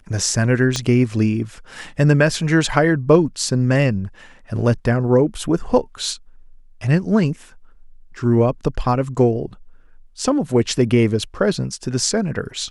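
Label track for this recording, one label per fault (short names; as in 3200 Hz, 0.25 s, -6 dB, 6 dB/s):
0.760000	0.760000	pop -8 dBFS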